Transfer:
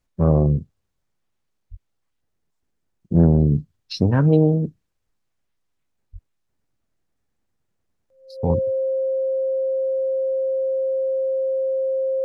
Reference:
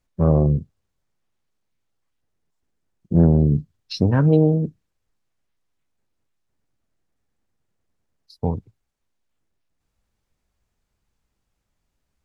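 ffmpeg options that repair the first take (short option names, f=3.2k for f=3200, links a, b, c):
-filter_complex "[0:a]bandreject=f=530:w=30,asplit=3[a][b][c];[a]afade=t=out:st=1.7:d=0.02[d];[b]highpass=f=140:w=0.5412,highpass=f=140:w=1.3066,afade=t=in:st=1.7:d=0.02,afade=t=out:st=1.82:d=0.02[e];[c]afade=t=in:st=1.82:d=0.02[f];[d][e][f]amix=inputs=3:normalize=0,asplit=3[g][h][i];[g]afade=t=out:st=3.35:d=0.02[j];[h]highpass=f=140:w=0.5412,highpass=f=140:w=1.3066,afade=t=in:st=3.35:d=0.02,afade=t=out:st=3.47:d=0.02[k];[i]afade=t=in:st=3.47:d=0.02[l];[j][k][l]amix=inputs=3:normalize=0,asplit=3[m][n][o];[m]afade=t=out:st=6.12:d=0.02[p];[n]highpass=f=140:w=0.5412,highpass=f=140:w=1.3066,afade=t=in:st=6.12:d=0.02,afade=t=out:st=6.24:d=0.02[q];[o]afade=t=in:st=6.24:d=0.02[r];[p][q][r]amix=inputs=3:normalize=0,asetnsamples=n=441:p=0,asendcmd='8.5 volume volume -5dB',volume=0dB"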